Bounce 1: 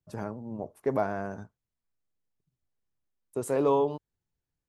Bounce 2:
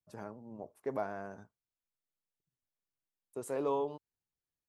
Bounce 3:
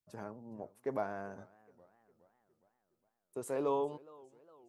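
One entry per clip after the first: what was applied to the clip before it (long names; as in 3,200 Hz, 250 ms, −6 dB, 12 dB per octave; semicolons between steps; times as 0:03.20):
low-shelf EQ 180 Hz −8 dB; level −7.5 dB
feedback echo with a swinging delay time 411 ms, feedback 52%, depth 166 cents, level −23 dB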